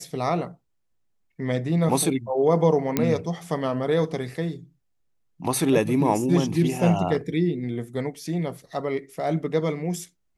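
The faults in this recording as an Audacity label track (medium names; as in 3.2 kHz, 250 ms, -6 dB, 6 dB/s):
2.970000	2.970000	pop -6 dBFS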